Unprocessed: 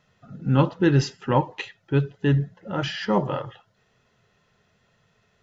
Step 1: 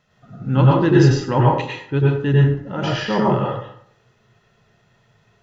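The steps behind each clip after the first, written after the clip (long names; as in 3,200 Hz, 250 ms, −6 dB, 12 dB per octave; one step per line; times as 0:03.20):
dense smooth reverb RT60 0.63 s, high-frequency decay 0.6×, pre-delay 85 ms, DRR −4 dB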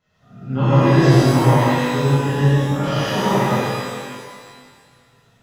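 reverb with rising layers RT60 1.8 s, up +12 semitones, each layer −8 dB, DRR −11.5 dB
level −11 dB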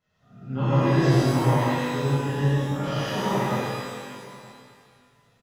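single-tap delay 919 ms −23 dB
level −7 dB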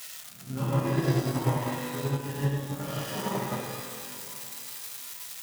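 spike at every zero crossing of −22.5 dBFS
transient designer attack +6 dB, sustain −6 dB
level −7.5 dB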